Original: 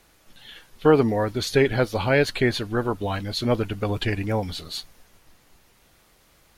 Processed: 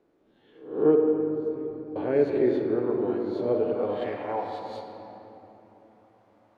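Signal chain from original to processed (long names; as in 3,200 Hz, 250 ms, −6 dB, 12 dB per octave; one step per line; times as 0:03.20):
peak hold with a rise ahead of every peak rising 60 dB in 0.51 s
0:00.95–0:01.96: guitar amp tone stack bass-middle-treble 10-0-1
rectangular room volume 220 cubic metres, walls hard, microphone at 0.4 metres
band-pass filter sweep 370 Hz → 770 Hz, 0:03.35–0:04.26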